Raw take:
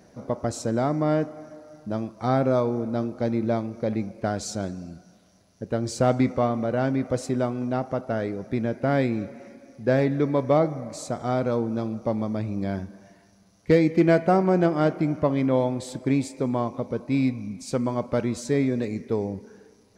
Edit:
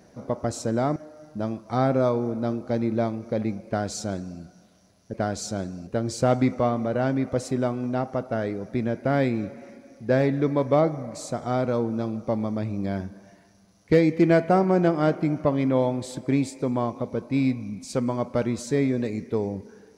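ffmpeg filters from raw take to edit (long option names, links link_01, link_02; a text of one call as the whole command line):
ffmpeg -i in.wav -filter_complex "[0:a]asplit=4[link_01][link_02][link_03][link_04];[link_01]atrim=end=0.962[link_05];[link_02]atrim=start=1.468:end=5.652[link_06];[link_03]atrim=start=4.178:end=4.912[link_07];[link_04]atrim=start=5.648[link_08];[link_05][link_06]acrossfade=duration=0.004:curve1=hsin:curve2=hsin[link_09];[link_09][link_07]acrossfade=duration=0.004:curve1=hsin:curve2=hsin[link_10];[link_10][link_08]acrossfade=duration=0.004:curve1=hsin:curve2=hsin" out.wav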